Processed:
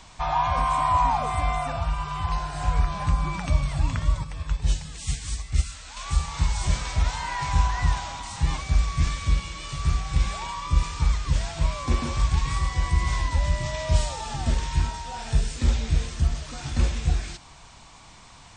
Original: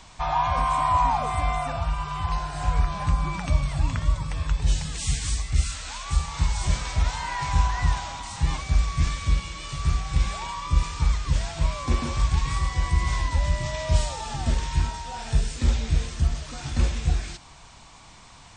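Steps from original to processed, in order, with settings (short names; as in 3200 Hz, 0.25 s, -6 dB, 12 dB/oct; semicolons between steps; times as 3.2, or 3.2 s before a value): 4.24–5.97 upward expander 1.5:1, over -29 dBFS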